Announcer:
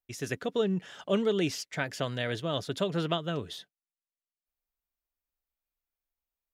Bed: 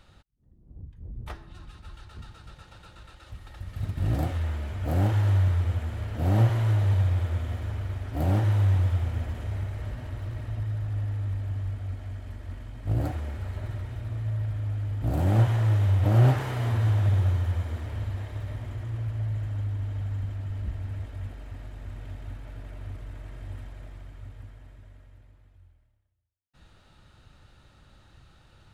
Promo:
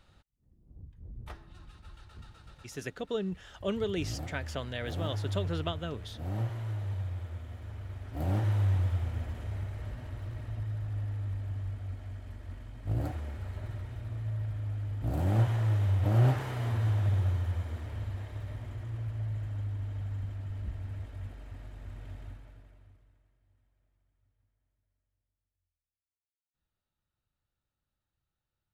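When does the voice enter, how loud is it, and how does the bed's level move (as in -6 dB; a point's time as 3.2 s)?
2.55 s, -5.0 dB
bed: 2.6 s -6 dB
2.9 s -12 dB
7.5 s -12 dB
8.45 s -5 dB
22.23 s -5 dB
23.39 s -32.5 dB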